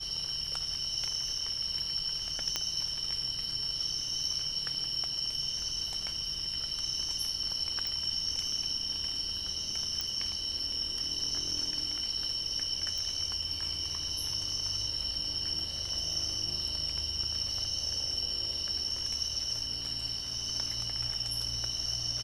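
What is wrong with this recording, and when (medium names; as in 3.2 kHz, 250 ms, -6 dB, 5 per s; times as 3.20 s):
2.56 s: pop -14 dBFS
7.87 s: pop
10.01 s: pop -17 dBFS
12.98 s: pop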